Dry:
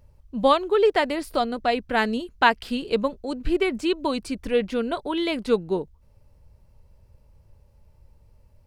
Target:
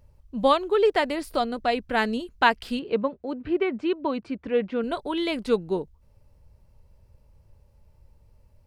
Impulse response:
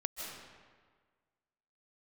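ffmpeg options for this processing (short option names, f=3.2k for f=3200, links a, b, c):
-filter_complex "[0:a]asettb=1/sr,asplit=3[a][b][c];[a]atrim=end=2.794[d];[b]atrim=start=2.79:end=4.84,asetpts=PTS-STARTPTS,afade=t=in:d=0.004:c=qsin,afade=t=out:st=2.046:d=0.004:c=qsin,highpass=110,lowpass=2.3k[e];[c]atrim=start=4.836[f];[d][e]acrossfade=d=0.004:c1=hsin:c2=qsin[g];[g][f]acrossfade=d=0.004:c1=qsin:c2=hsin,volume=-1.5dB"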